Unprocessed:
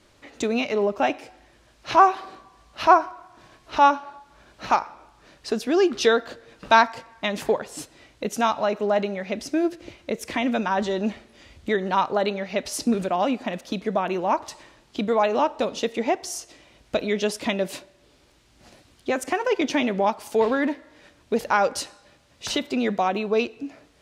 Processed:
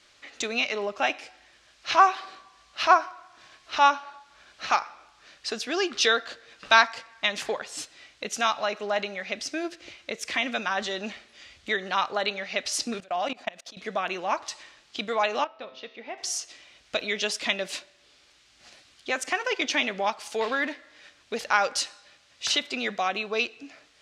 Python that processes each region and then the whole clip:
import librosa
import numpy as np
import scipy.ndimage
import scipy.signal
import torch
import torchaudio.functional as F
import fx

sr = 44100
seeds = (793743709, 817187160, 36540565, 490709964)

y = fx.chain(x, sr, fx.peak_eq(hz=680.0, db=7.0, octaves=0.42),
    fx.level_steps(step_db=22), at=(13.0, 13.77))
y = fx.chain(y, sr, fx.lowpass(hz=4900.0, slope=24),
    fx.high_shelf(hz=3700.0, db=-11.0),
    fx.comb_fb(f0_hz=130.0, decay_s=0.89, harmonics='all', damping=0.0, mix_pct=70), at=(15.44, 16.18))
y = scipy.signal.sosfilt(scipy.signal.butter(2, 6900.0, 'lowpass', fs=sr, output='sos'), y)
y = fx.tilt_shelf(y, sr, db=-9.5, hz=780.0)
y = fx.notch(y, sr, hz=940.0, q=11.0)
y = y * 10.0 ** (-4.0 / 20.0)